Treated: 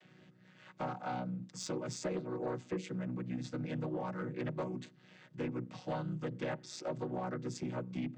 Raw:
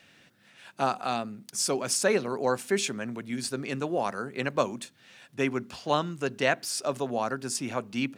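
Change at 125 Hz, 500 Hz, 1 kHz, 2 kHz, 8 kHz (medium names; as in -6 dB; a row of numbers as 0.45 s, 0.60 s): -1.5 dB, -11.0 dB, -12.0 dB, -15.5 dB, -18.0 dB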